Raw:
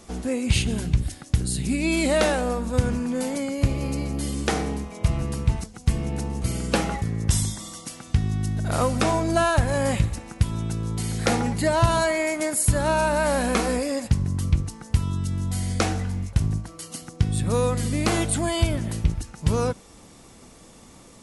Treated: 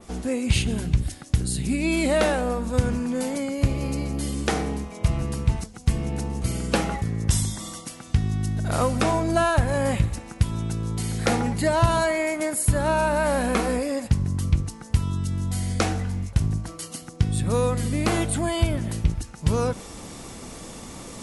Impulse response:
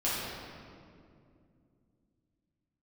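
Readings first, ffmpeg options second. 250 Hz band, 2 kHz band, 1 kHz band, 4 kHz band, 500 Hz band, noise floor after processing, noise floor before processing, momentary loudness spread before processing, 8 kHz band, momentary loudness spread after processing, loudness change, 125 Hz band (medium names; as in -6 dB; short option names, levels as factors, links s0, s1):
0.0 dB, -0.5 dB, 0.0 dB, -1.5 dB, 0.0 dB, -43 dBFS, -48 dBFS, 7 LU, -1.5 dB, 7 LU, 0.0 dB, 0.0 dB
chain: -af "areverse,acompressor=mode=upward:threshold=0.0398:ratio=2.5,areverse,adynamicequalizer=threshold=0.00891:dfrequency=6000:dqfactor=0.73:tfrequency=6000:tqfactor=0.73:attack=5:release=100:ratio=0.375:range=2.5:mode=cutabove:tftype=bell"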